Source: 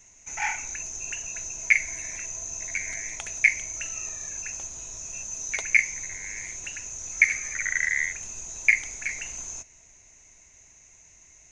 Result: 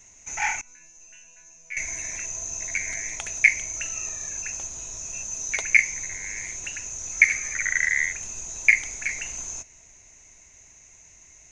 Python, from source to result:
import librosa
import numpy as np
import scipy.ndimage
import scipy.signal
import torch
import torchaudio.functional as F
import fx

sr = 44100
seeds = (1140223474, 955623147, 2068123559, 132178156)

y = fx.resonator_bank(x, sr, root=52, chord='fifth', decay_s=0.6, at=(0.61, 1.77))
y = F.gain(torch.from_numpy(y), 2.5).numpy()